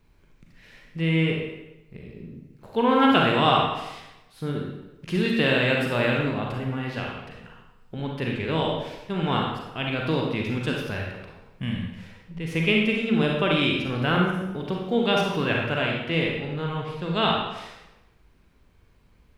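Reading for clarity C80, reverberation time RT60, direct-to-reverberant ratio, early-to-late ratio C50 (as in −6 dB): 4.0 dB, 0.95 s, −1.0 dB, 1.5 dB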